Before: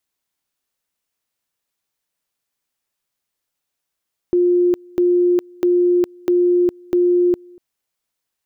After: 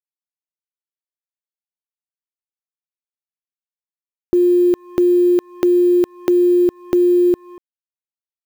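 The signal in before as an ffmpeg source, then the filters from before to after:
-f lavfi -i "aevalsrc='pow(10,(-11.5-28*gte(mod(t,0.65),0.41))/20)*sin(2*PI*354*t)':duration=3.25:sample_rate=44100"
-filter_complex "[0:a]asplit=2[link_01][link_02];[link_02]acompressor=threshold=-25dB:ratio=8,volume=-1dB[link_03];[link_01][link_03]amix=inputs=2:normalize=0,acrusher=bits=5:mix=0:aa=0.5"

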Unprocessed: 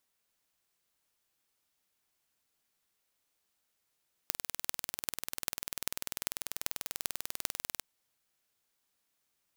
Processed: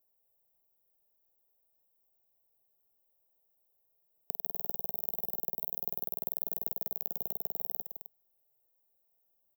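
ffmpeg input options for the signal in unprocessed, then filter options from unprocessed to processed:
-f lavfi -i "aevalsrc='0.75*eq(mod(n,2172),0)*(0.5+0.5*eq(mod(n,17376),0))':duration=3.53:sample_rate=44100"
-filter_complex "[0:a]asplit=2[link_01][link_02];[link_02]aecho=0:1:160.3|262.4:0.355|0.282[link_03];[link_01][link_03]amix=inputs=2:normalize=0,asoftclip=type=tanh:threshold=-6dB,firequalizer=gain_entry='entry(170,0);entry(240,-11);entry(430,3);entry(690,4);entry(1400,-22);entry(10000,-16);entry(15000,9)':delay=0.05:min_phase=1"

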